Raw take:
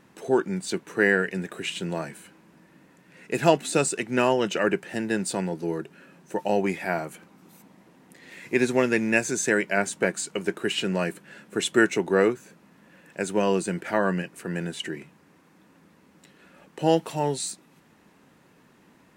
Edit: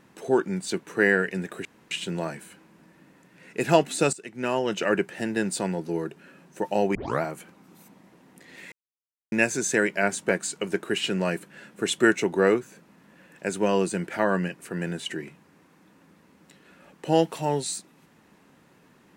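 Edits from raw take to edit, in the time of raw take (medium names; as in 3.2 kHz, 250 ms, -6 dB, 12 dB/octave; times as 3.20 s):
1.65 s: insert room tone 0.26 s
3.87–4.63 s: fade in, from -17 dB
6.69 s: tape start 0.27 s
8.46–9.06 s: mute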